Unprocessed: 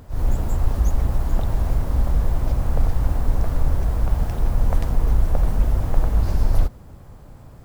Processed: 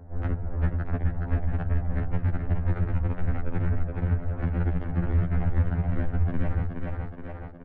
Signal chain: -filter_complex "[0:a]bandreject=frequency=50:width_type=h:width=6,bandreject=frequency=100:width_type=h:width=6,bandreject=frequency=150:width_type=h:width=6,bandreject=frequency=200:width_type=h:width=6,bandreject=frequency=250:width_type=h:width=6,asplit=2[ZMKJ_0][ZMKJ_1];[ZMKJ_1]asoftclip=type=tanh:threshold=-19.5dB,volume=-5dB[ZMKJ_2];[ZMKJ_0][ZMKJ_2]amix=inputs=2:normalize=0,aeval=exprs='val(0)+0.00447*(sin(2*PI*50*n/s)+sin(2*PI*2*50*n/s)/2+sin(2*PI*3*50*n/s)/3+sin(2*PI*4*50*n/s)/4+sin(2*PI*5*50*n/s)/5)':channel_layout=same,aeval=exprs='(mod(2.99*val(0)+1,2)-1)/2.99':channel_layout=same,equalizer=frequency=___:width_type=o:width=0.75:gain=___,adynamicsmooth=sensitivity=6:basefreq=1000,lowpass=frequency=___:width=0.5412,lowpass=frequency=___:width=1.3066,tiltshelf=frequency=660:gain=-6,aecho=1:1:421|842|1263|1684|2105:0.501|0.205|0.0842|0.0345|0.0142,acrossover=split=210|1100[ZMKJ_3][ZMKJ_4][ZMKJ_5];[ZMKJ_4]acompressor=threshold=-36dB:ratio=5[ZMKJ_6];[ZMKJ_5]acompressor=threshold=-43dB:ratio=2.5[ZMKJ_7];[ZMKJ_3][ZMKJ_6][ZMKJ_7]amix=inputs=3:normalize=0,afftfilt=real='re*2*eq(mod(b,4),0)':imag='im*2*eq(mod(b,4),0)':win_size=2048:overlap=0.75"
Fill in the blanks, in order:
1100, -13.5, 1500, 1500